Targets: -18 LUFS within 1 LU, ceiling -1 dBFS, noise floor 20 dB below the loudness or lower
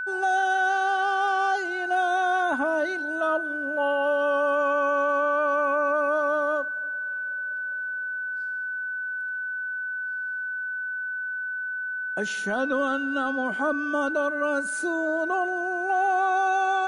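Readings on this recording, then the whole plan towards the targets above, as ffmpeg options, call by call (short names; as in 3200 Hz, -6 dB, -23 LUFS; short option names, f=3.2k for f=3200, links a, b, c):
steady tone 1500 Hz; tone level -28 dBFS; loudness -25.5 LUFS; peak -15.5 dBFS; loudness target -18.0 LUFS
-> -af "bandreject=f=1.5k:w=30"
-af "volume=7.5dB"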